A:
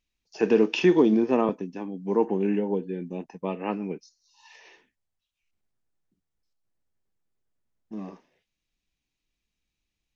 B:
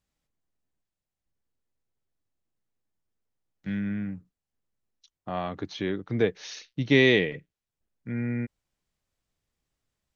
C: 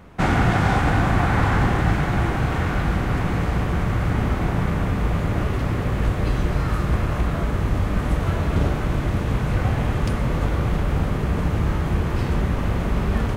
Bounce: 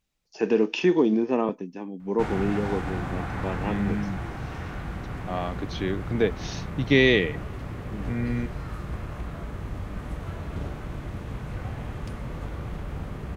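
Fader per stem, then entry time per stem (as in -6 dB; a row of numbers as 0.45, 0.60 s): -1.5, +1.0, -12.5 dB; 0.00, 0.00, 2.00 s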